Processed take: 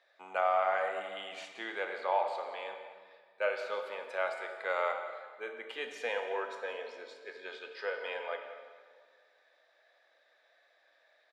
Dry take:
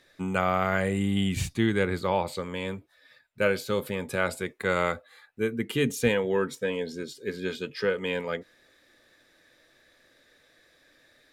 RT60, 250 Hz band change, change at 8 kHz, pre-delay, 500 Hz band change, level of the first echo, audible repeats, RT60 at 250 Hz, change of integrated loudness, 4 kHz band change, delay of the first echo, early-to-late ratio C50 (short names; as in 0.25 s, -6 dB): 1.8 s, -26.0 dB, under -15 dB, 13 ms, -7.0 dB, -15.5 dB, 1, 1.9 s, -7.5 dB, -9.0 dB, 0.178 s, 6.0 dB